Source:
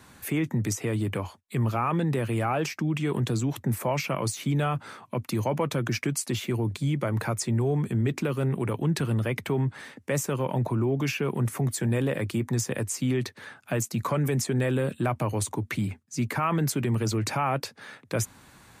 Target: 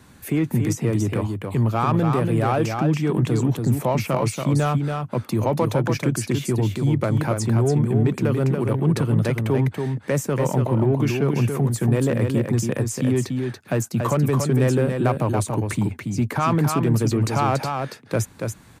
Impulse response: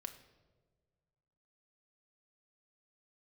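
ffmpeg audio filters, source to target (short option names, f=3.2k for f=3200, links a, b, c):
-filter_complex "[0:a]asplit=2[a][b];[b]adynamicsmooth=sensitivity=2:basefreq=520,volume=-0.5dB[c];[a][c]amix=inputs=2:normalize=0,aecho=1:1:283:0.562"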